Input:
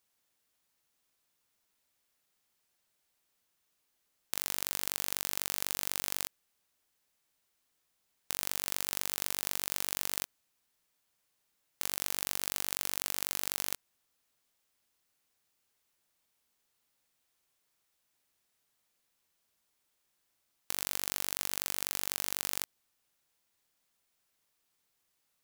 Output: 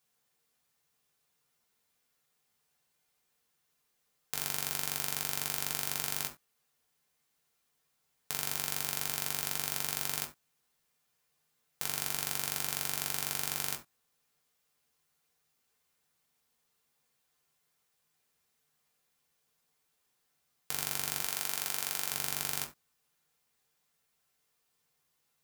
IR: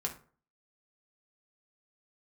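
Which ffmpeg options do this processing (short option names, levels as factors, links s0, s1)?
-filter_complex "[0:a]asettb=1/sr,asplit=3[s0][s1][s2];[s0]atrim=end=21.224[s3];[s1]atrim=start=21.22:end=22.12,asetpts=PTS-STARTPTS,afade=t=in:d=0.004:c=qsin,afade=t=out:st=0.896:d=0.004:c=qsin,highpass=f=330:p=1[s4];[s2]atrim=start=22.116[s5];[s3][s4]acrossfade=d=0.004:c1=hsin:c2=qsin[s6];[s6][s5]acrossfade=d=0.004:c1=qsin:c2=hsin[s7];[1:a]atrim=start_sample=2205,atrim=end_sample=4410[s8];[s7][s8]afir=irnorm=-1:irlink=0"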